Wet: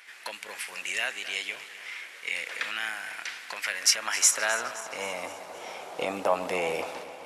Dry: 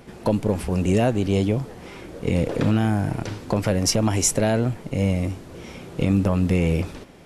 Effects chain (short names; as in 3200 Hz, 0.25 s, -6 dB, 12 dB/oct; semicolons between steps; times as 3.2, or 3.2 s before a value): regenerating reverse delay 0.13 s, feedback 73%, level -14 dB; high-pass sweep 1900 Hz -> 740 Hz, 3.72–5.7